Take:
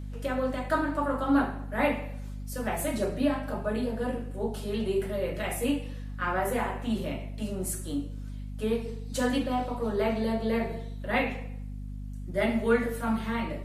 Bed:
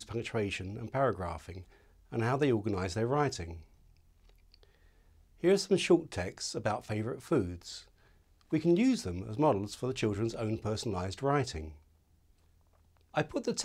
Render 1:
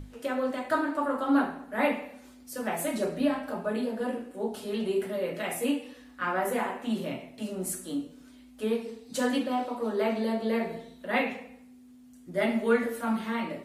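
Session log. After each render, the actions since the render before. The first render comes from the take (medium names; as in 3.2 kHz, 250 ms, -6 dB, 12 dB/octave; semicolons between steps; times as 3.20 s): hum notches 50/100/150/200 Hz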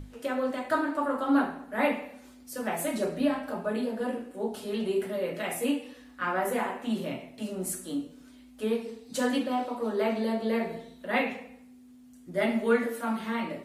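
12.69–13.20 s: high-pass 66 Hz -> 260 Hz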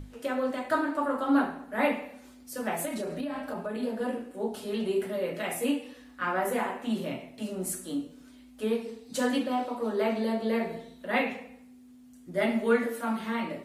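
2.85–3.83 s: compression 12:1, threshold -29 dBFS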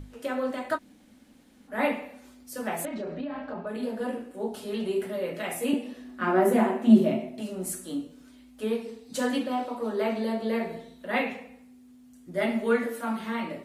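0.76–1.69 s: room tone, crossfade 0.06 s; 2.85–3.67 s: distance through air 200 m; 5.73–7.41 s: small resonant body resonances 220/370/630 Hz, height 15 dB, ringing for 65 ms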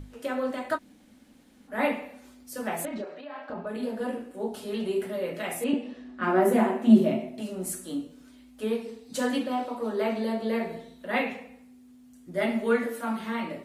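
3.04–3.50 s: high-pass 570 Hz; 5.64–6.23 s: distance through air 97 m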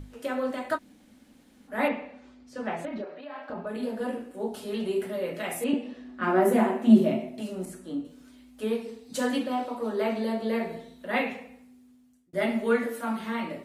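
1.88–3.22 s: distance through air 140 m; 7.65–8.05 s: low-pass 1.6 kHz 6 dB/octave; 11.41–12.33 s: fade out equal-power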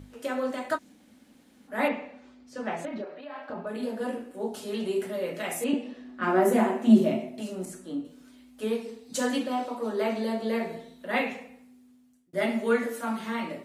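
high-pass 97 Hz 6 dB/octave; dynamic bell 6.6 kHz, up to +6 dB, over -59 dBFS, Q 1.6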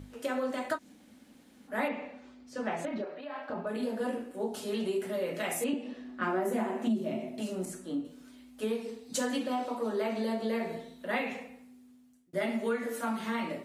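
compression 5:1, threshold -28 dBFS, peak gain reduction 15 dB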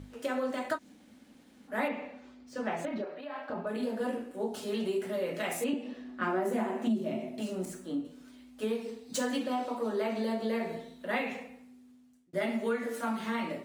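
median filter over 3 samples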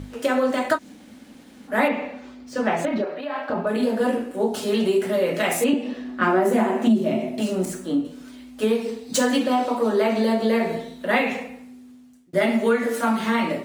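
trim +11.5 dB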